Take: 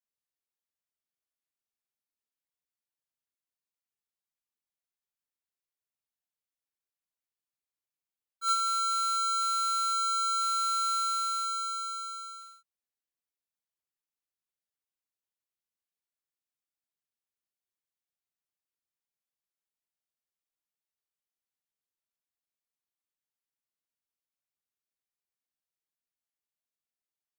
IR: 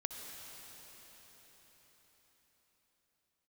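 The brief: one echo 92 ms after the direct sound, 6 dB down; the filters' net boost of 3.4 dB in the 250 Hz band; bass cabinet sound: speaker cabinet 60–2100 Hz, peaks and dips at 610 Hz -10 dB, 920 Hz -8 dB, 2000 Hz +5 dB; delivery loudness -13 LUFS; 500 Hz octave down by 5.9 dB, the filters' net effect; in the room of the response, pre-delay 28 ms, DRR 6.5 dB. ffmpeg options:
-filter_complex "[0:a]equalizer=f=250:t=o:g=6,equalizer=f=500:t=o:g=-6,aecho=1:1:92:0.501,asplit=2[a][b];[1:a]atrim=start_sample=2205,adelay=28[c];[b][c]afir=irnorm=-1:irlink=0,volume=-6.5dB[d];[a][d]amix=inputs=2:normalize=0,highpass=f=60:w=0.5412,highpass=f=60:w=1.3066,equalizer=f=610:t=q:w=4:g=-10,equalizer=f=920:t=q:w=4:g=-8,equalizer=f=2k:t=q:w=4:g=5,lowpass=f=2.1k:w=0.5412,lowpass=f=2.1k:w=1.3066,volume=14dB"

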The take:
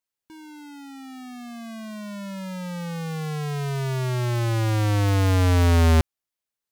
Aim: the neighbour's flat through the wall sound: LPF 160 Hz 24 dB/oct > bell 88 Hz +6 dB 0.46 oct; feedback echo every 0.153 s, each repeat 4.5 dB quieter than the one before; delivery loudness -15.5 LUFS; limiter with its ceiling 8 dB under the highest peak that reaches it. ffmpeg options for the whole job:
-af "alimiter=limit=-23dB:level=0:latency=1,lowpass=f=160:w=0.5412,lowpass=f=160:w=1.3066,equalizer=f=88:t=o:w=0.46:g=6,aecho=1:1:153|306|459|612|765|918|1071|1224|1377:0.596|0.357|0.214|0.129|0.0772|0.0463|0.0278|0.0167|0.01,volume=7dB"

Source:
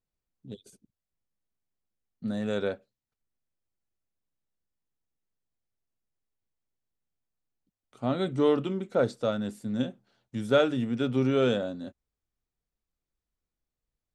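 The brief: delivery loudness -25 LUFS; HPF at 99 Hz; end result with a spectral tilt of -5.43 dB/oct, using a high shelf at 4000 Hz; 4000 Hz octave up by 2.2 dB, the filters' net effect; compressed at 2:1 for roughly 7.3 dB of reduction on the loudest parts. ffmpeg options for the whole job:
-af "highpass=99,highshelf=f=4k:g=-5.5,equalizer=f=4k:t=o:g=5.5,acompressor=threshold=-31dB:ratio=2,volume=8.5dB"

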